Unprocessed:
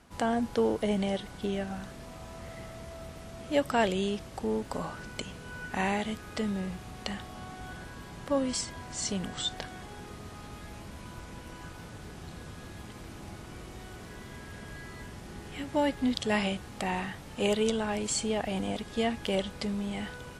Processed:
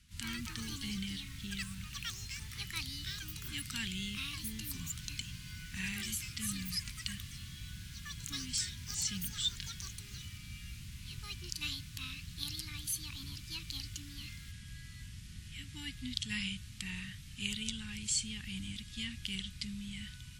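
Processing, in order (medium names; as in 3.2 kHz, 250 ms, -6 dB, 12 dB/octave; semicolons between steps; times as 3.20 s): ever faster or slower copies 88 ms, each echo +6 st, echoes 3; Chebyshev band-stop 120–2900 Hz, order 2; trim -1 dB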